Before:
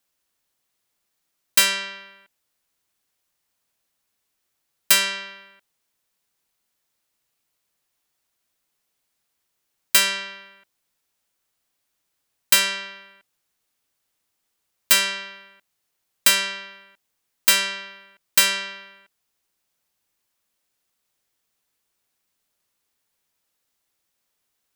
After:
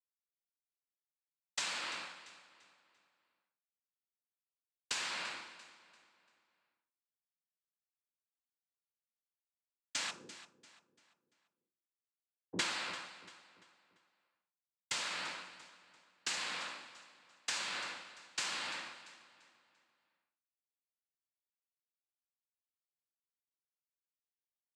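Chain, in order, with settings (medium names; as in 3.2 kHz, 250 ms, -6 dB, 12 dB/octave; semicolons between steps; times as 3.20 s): 10.10–12.59 s: steep low-pass 510 Hz 96 dB/octave; expander -43 dBFS; compression 12:1, threshold -28 dBFS, peak gain reduction 17.5 dB; feedback comb 140 Hz, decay 0.44 s, harmonics odd, mix 70%; noise-vocoded speech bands 8; feedback delay 342 ms, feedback 44%, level -15 dB; reverberation RT60 0.60 s, pre-delay 3 ms, DRR 14.5 dB; tape noise reduction on one side only decoder only; trim +6 dB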